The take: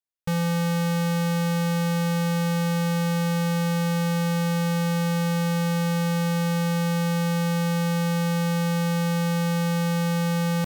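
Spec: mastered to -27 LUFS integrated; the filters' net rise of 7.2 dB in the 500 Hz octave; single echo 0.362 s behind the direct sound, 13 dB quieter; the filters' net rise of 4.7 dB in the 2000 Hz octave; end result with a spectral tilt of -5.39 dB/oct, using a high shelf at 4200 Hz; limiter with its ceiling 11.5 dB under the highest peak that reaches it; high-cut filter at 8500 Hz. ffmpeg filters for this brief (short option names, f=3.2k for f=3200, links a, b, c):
-af "lowpass=8.5k,equalizer=f=500:t=o:g=7,equalizer=f=2k:t=o:g=7,highshelf=f=4.2k:g=-7,alimiter=level_in=4dB:limit=-24dB:level=0:latency=1,volume=-4dB,aecho=1:1:362:0.224,volume=8dB"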